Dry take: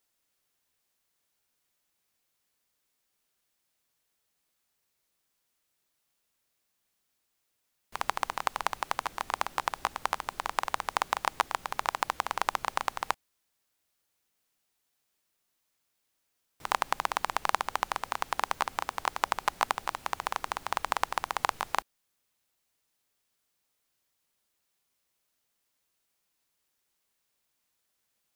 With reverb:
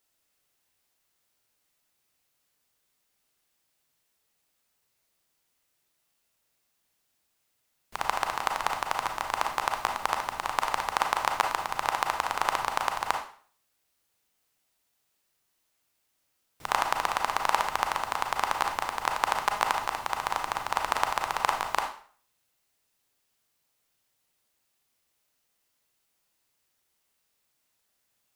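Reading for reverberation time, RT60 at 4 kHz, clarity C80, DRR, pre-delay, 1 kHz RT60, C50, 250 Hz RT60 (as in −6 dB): 0.45 s, 0.45 s, 11.0 dB, 3.0 dB, 26 ms, 0.50 s, 6.0 dB, 0.45 s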